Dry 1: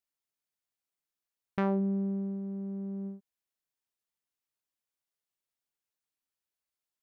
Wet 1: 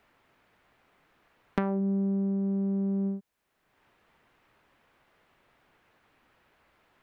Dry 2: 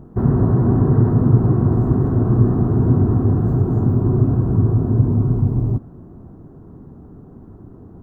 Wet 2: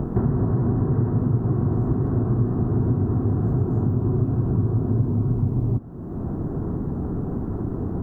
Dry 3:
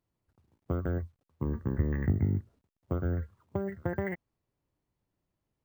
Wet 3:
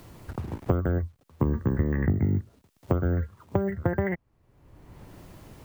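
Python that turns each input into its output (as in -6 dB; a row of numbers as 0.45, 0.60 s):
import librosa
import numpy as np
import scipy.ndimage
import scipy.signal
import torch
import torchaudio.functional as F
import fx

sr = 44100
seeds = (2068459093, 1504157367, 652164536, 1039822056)

y = fx.band_squash(x, sr, depth_pct=100)
y = y * 10.0 ** (-9 / 20.0) / np.max(np.abs(y))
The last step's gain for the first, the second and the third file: +4.0, -6.0, +5.5 dB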